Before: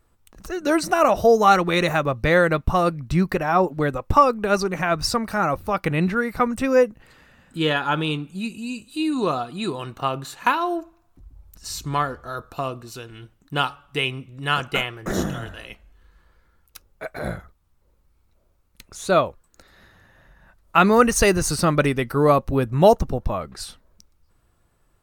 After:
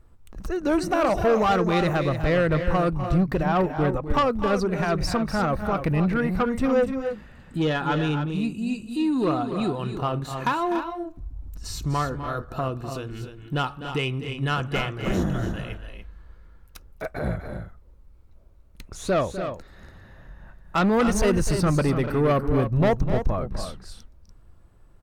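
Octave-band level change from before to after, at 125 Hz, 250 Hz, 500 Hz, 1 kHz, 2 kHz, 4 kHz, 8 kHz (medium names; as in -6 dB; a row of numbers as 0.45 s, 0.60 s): +1.5 dB, 0.0 dB, -3.5 dB, -5.0 dB, -5.5 dB, -6.0 dB, -7.5 dB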